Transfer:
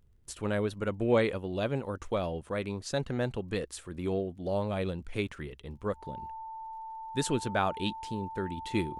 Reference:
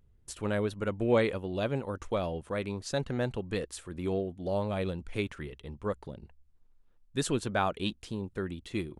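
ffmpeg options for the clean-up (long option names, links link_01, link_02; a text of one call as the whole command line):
ffmpeg -i in.wav -af "adeclick=threshold=4,bandreject=frequency=890:width=30,asetnsamples=nb_out_samples=441:pad=0,asendcmd='8.57 volume volume -3.5dB',volume=0dB" out.wav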